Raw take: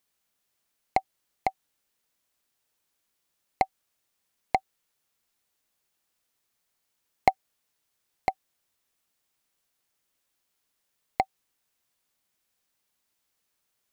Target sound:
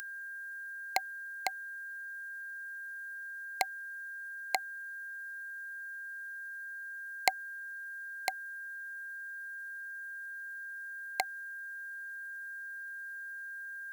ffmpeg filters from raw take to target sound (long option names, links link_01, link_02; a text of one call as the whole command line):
ffmpeg -i in.wav -af "aeval=exprs='val(0)+0.0126*sin(2*PI*1600*n/s)':channel_layout=same,acompressor=mode=upward:threshold=-45dB:ratio=2.5,aderivative,volume=10.5dB" out.wav